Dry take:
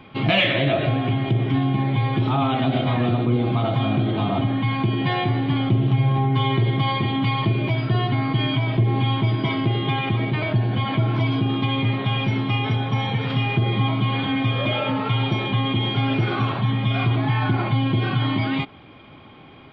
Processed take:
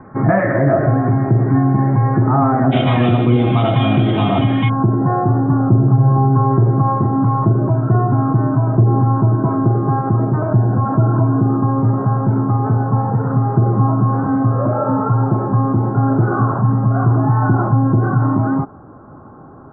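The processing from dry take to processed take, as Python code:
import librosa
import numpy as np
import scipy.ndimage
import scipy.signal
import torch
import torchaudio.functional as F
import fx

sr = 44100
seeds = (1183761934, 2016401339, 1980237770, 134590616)

y = fx.steep_lowpass(x, sr, hz=fx.steps((0.0, 1800.0), (2.71, 3600.0), (4.68, 1500.0)), slope=72)
y = F.gain(torch.from_numpy(y), 7.0).numpy()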